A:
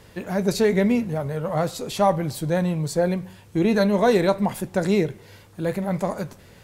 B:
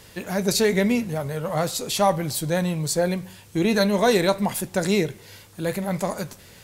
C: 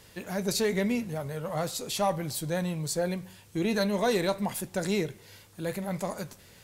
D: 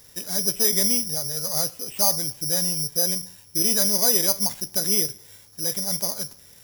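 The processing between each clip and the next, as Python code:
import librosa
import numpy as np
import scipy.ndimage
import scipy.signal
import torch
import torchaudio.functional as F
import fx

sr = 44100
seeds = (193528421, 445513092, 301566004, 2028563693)

y1 = fx.high_shelf(x, sr, hz=2400.0, db=10.5)
y1 = y1 * 10.0 ** (-1.5 / 20.0)
y2 = 10.0 ** (-8.5 / 20.0) * np.tanh(y1 / 10.0 ** (-8.5 / 20.0))
y2 = y2 * 10.0 ** (-6.5 / 20.0)
y3 = (np.kron(scipy.signal.resample_poly(y2, 1, 8), np.eye(8)[0]) * 8)[:len(y2)]
y3 = y3 * 10.0 ** (-2.5 / 20.0)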